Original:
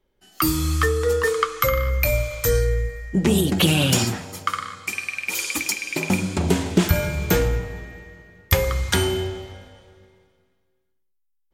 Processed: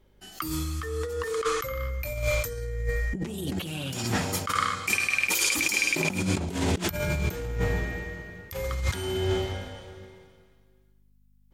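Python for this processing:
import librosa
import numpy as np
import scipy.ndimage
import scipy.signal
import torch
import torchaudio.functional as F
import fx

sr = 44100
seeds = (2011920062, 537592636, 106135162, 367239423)

y = fx.over_compress(x, sr, threshold_db=-29.0, ratio=-1.0)
y = fx.add_hum(y, sr, base_hz=50, snr_db=34)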